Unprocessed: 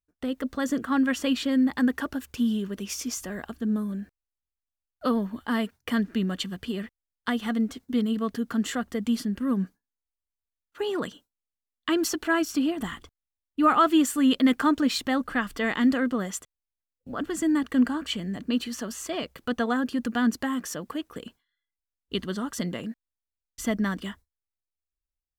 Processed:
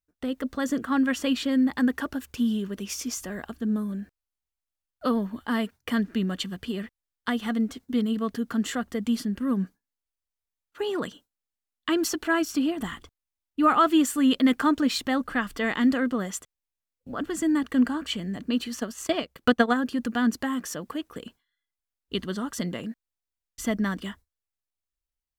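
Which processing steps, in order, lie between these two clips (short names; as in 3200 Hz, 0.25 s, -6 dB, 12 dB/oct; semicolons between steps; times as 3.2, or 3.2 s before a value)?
18.79–19.76 transient shaper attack +10 dB, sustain -9 dB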